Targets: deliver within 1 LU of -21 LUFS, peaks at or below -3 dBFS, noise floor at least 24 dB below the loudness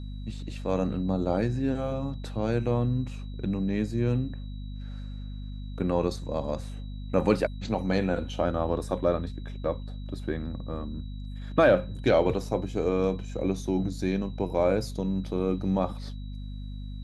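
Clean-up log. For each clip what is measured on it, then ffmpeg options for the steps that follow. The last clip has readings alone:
hum 50 Hz; highest harmonic 250 Hz; hum level -34 dBFS; steady tone 3.9 kHz; tone level -56 dBFS; loudness -28.5 LUFS; peak level -9.0 dBFS; loudness target -21.0 LUFS
-> -af "bandreject=f=50:t=h:w=6,bandreject=f=100:t=h:w=6,bandreject=f=150:t=h:w=6,bandreject=f=200:t=h:w=6,bandreject=f=250:t=h:w=6"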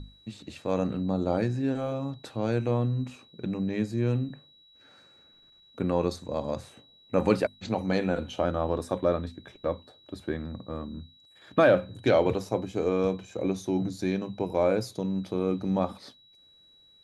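hum not found; steady tone 3.9 kHz; tone level -56 dBFS
-> -af "bandreject=f=3900:w=30"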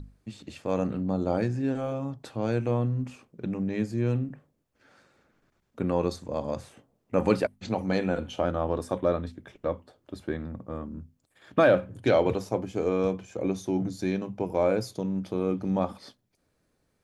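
steady tone not found; loudness -29.0 LUFS; peak level -8.5 dBFS; loudness target -21.0 LUFS
-> -af "volume=2.51,alimiter=limit=0.708:level=0:latency=1"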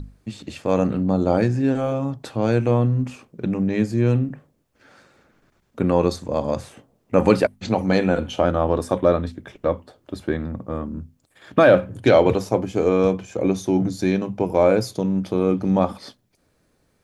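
loudness -21.0 LUFS; peak level -3.0 dBFS; noise floor -66 dBFS

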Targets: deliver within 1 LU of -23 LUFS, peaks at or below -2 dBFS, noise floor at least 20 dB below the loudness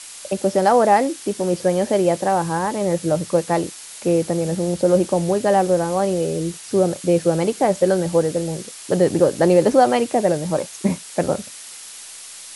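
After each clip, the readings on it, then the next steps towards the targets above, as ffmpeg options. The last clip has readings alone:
noise floor -38 dBFS; noise floor target -40 dBFS; loudness -19.5 LUFS; peak level -3.5 dBFS; loudness target -23.0 LUFS
-> -af "afftdn=nr=6:nf=-38"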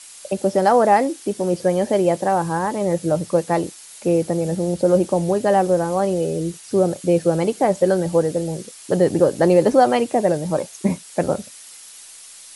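noise floor -42 dBFS; loudness -19.5 LUFS; peak level -3.5 dBFS; loudness target -23.0 LUFS
-> -af "volume=0.668"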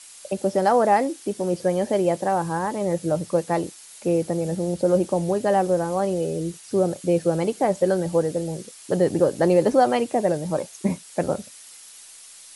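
loudness -23.0 LUFS; peak level -7.0 dBFS; noise floor -45 dBFS

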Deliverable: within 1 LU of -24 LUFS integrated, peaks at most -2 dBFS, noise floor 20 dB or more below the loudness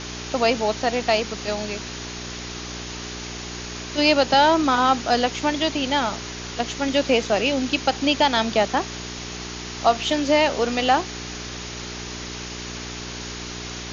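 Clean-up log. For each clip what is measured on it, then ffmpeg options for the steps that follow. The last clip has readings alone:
hum 60 Hz; highest harmonic 420 Hz; hum level -34 dBFS; noise floor -34 dBFS; noise floor target -43 dBFS; loudness -23.0 LUFS; peak level -5.0 dBFS; loudness target -24.0 LUFS
-> -af "bandreject=f=60:t=h:w=4,bandreject=f=120:t=h:w=4,bandreject=f=180:t=h:w=4,bandreject=f=240:t=h:w=4,bandreject=f=300:t=h:w=4,bandreject=f=360:t=h:w=4,bandreject=f=420:t=h:w=4"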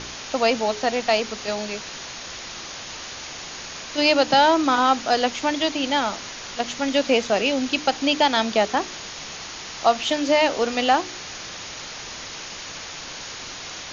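hum not found; noise floor -36 dBFS; noise floor target -43 dBFS
-> -af "afftdn=nr=7:nf=-36"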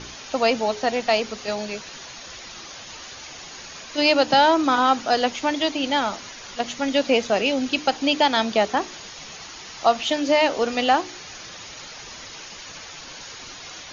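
noise floor -40 dBFS; noise floor target -42 dBFS
-> -af "afftdn=nr=6:nf=-40"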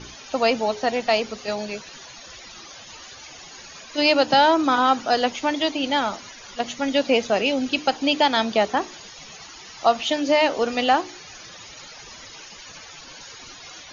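noise floor -43 dBFS; loudness -21.5 LUFS; peak level -5.0 dBFS; loudness target -24.0 LUFS
-> -af "volume=0.75"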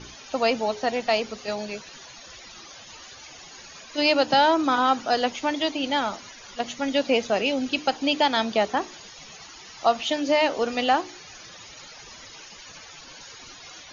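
loudness -24.0 LUFS; peak level -7.5 dBFS; noise floor -45 dBFS

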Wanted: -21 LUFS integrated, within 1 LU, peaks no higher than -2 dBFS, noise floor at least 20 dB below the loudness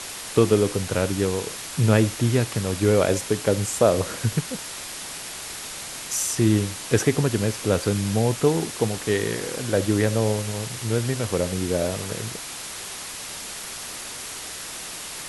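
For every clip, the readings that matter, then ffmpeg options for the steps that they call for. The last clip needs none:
noise floor -35 dBFS; noise floor target -45 dBFS; loudness -24.5 LUFS; peak level -3.5 dBFS; loudness target -21.0 LUFS
-> -af "afftdn=nr=10:nf=-35"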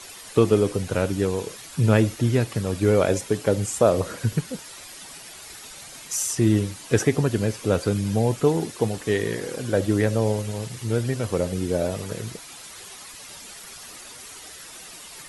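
noise floor -42 dBFS; noise floor target -44 dBFS
-> -af "afftdn=nr=6:nf=-42"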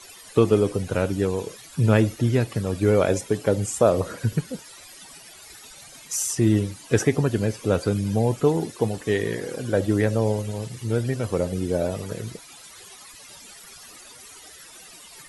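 noise floor -46 dBFS; loudness -23.5 LUFS; peak level -3.5 dBFS; loudness target -21.0 LUFS
-> -af "volume=1.33,alimiter=limit=0.794:level=0:latency=1"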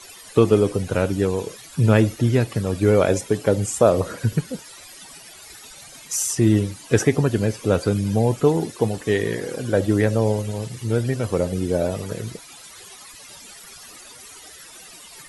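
loudness -21.0 LUFS; peak level -2.0 dBFS; noise floor -43 dBFS

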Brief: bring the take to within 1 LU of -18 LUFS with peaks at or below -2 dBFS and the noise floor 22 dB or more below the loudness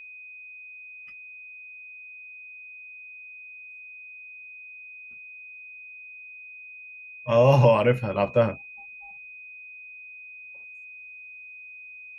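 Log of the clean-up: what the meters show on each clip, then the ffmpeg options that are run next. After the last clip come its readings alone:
steady tone 2.5 kHz; tone level -41 dBFS; loudness -21.5 LUFS; peak level -6.5 dBFS; loudness target -18.0 LUFS
-> -af "bandreject=f=2500:w=30"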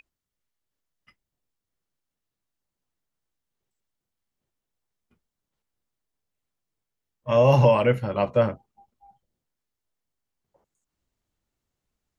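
steady tone not found; loudness -21.0 LUFS; peak level -6.5 dBFS; loudness target -18.0 LUFS
-> -af "volume=1.41"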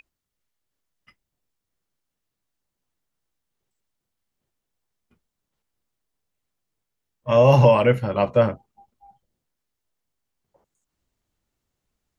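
loudness -18.0 LUFS; peak level -3.5 dBFS; noise floor -83 dBFS

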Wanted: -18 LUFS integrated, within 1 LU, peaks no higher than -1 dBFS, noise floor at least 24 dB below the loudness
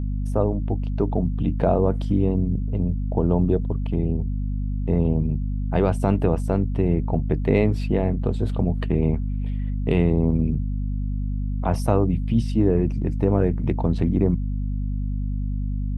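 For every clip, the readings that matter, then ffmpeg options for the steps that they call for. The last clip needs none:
hum 50 Hz; highest harmonic 250 Hz; hum level -22 dBFS; loudness -23.5 LUFS; peak level -4.0 dBFS; loudness target -18.0 LUFS
-> -af "bandreject=f=50:t=h:w=4,bandreject=f=100:t=h:w=4,bandreject=f=150:t=h:w=4,bandreject=f=200:t=h:w=4,bandreject=f=250:t=h:w=4"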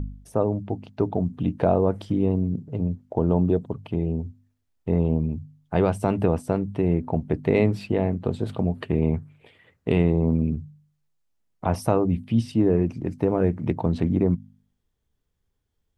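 hum not found; loudness -24.5 LUFS; peak level -5.5 dBFS; loudness target -18.0 LUFS
-> -af "volume=2.11,alimiter=limit=0.891:level=0:latency=1"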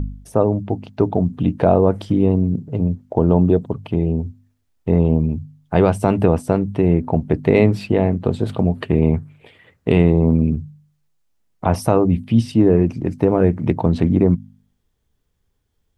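loudness -18.0 LUFS; peak level -1.0 dBFS; noise floor -69 dBFS

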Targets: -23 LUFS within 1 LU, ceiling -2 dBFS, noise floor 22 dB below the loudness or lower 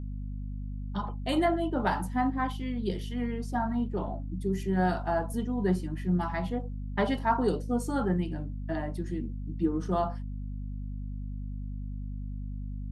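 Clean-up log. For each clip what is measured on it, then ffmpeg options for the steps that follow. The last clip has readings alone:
hum 50 Hz; highest harmonic 250 Hz; hum level -33 dBFS; loudness -31.5 LUFS; peak level -13.5 dBFS; loudness target -23.0 LUFS
-> -af "bandreject=f=50:t=h:w=6,bandreject=f=100:t=h:w=6,bandreject=f=150:t=h:w=6,bandreject=f=200:t=h:w=6,bandreject=f=250:t=h:w=6"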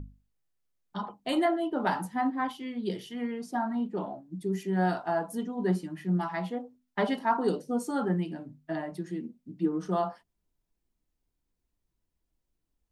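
hum not found; loudness -31.5 LUFS; peak level -13.0 dBFS; loudness target -23.0 LUFS
-> -af "volume=2.66"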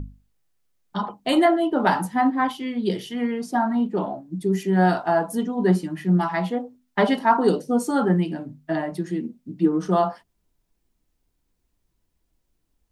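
loudness -23.0 LUFS; peak level -4.5 dBFS; noise floor -73 dBFS

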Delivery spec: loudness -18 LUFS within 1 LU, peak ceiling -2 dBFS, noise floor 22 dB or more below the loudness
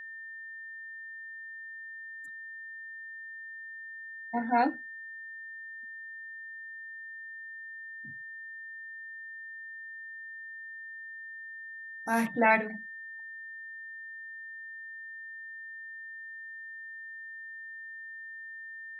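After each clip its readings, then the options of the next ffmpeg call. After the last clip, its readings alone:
steady tone 1.8 kHz; tone level -41 dBFS; loudness -37.0 LUFS; peak level -11.5 dBFS; loudness target -18.0 LUFS
-> -af "bandreject=f=1800:w=30"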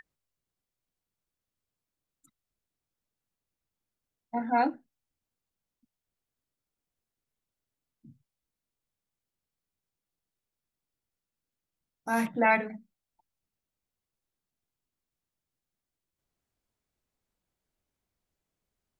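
steady tone not found; loudness -28.0 LUFS; peak level -12.5 dBFS; loudness target -18.0 LUFS
-> -af "volume=3.16"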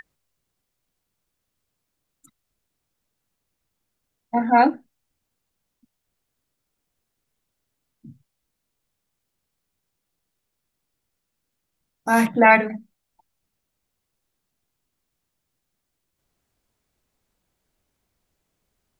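loudness -18.5 LUFS; peak level -2.5 dBFS; noise floor -79 dBFS

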